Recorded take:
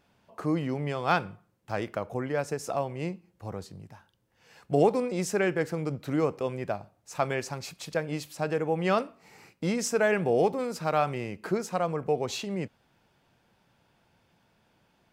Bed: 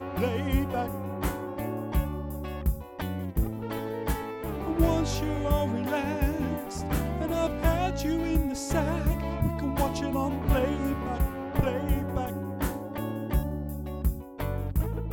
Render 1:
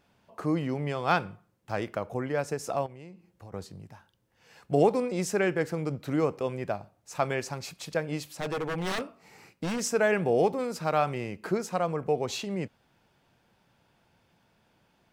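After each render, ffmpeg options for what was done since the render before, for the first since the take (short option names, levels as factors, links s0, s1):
-filter_complex "[0:a]asettb=1/sr,asplit=3[s0][s1][s2];[s0]atrim=end=2.864[s3];[s1]atrim=start=2.86:end=3.54,asetpts=PTS-STARTPTS,afade=t=in:d=0.004:c=qsin,afade=t=out:st=0.676:d=0.004:c=qsin,acompressor=threshold=0.00631:ratio=4:attack=3.2:release=140:knee=1:detection=peak[s4];[s2]atrim=start=3.536[s5];[s3][s4]acrossfade=d=0.004:c1=hsin:c2=qsin[s6];[s6][s5]acrossfade=d=0.004:c1=qsin:c2=hsin,asettb=1/sr,asplit=3[s7][s8][s9];[s7]atrim=end=8.264[s10];[s8]atrim=start=8.26:end=9.83,asetpts=PTS-STARTPTS,afade=t=in:d=0.004:c=qsin,afade=t=out:st=1.566:d=0.004:c=qsin,aeval=exprs='0.0531*(abs(mod(val(0)/0.0531+3,4)-2)-1)':c=same[s11];[s9]atrim=start=9.826[s12];[s10][s11]acrossfade=d=0.004:c1=hsin:c2=qsin[s13];[s13][s12]acrossfade=d=0.004:c1=qsin:c2=hsin"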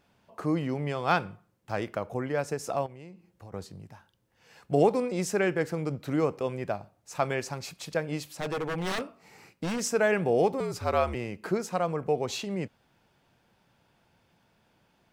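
-filter_complex "[0:a]asettb=1/sr,asplit=3[s0][s1][s2];[s0]atrim=end=10.604[s3];[s1]atrim=start=10.6:end=11.15,asetpts=PTS-STARTPTS,afade=t=in:d=0.004:c=qsin,afade=t=out:st=0.546:d=0.004:c=qsin,afreqshift=-63[s4];[s2]atrim=start=11.146[s5];[s3][s4]acrossfade=d=0.004:c1=hsin:c2=qsin[s6];[s6][s5]acrossfade=d=0.004:c1=qsin:c2=hsin"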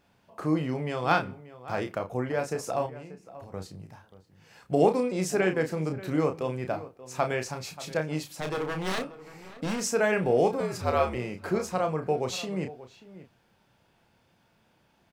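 -filter_complex "[0:a]asplit=2[s0][s1];[s1]adelay=32,volume=0.473[s2];[s0][s2]amix=inputs=2:normalize=0,asplit=2[s3][s4];[s4]adelay=583.1,volume=0.158,highshelf=f=4000:g=-13.1[s5];[s3][s5]amix=inputs=2:normalize=0"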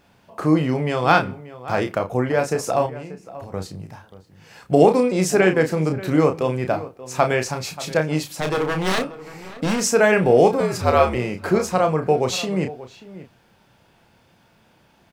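-af "volume=2.82,alimiter=limit=0.891:level=0:latency=1"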